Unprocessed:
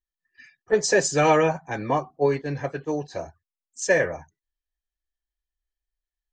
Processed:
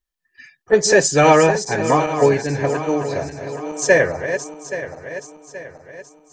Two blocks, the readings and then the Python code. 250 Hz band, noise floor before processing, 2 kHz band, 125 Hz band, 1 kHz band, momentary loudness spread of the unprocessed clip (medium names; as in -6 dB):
+7.5 dB, under -85 dBFS, +7.0 dB, +7.0 dB, +7.0 dB, 14 LU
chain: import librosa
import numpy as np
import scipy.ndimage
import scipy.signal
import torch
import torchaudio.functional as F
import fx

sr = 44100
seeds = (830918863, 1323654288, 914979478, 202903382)

y = fx.reverse_delay_fb(x, sr, ms=413, feedback_pct=65, wet_db=-9.5)
y = y * librosa.db_to_amplitude(6.5)